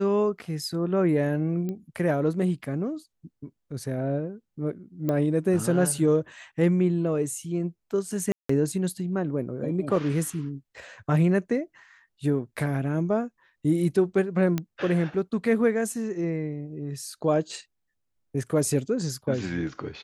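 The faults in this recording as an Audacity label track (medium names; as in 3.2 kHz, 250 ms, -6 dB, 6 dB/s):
1.690000	1.690000	pop -21 dBFS
5.090000	5.090000	pop -15 dBFS
8.320000	8.490000	dropout 174 ms
14.580000	14.580000	pop -14 dBFS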